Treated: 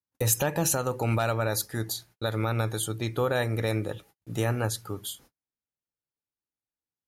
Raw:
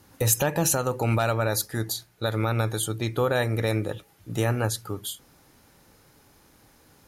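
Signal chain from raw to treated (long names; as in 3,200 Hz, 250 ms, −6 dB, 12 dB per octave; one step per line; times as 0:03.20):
noise gate −49 dBFS, range −42 dB
level −2.5 dB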